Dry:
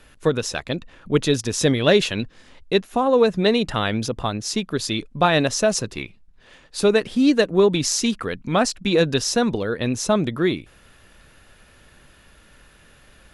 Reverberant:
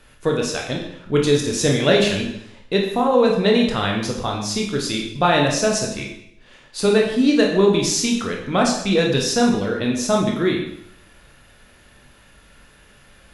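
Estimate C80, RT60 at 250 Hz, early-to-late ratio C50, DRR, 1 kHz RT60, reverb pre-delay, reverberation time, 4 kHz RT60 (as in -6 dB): 8.0 dB, 0.70 s, 5.0 dB, -0.5 dB, 0.70 s, 12 ms, 0.70 s, 0.70 s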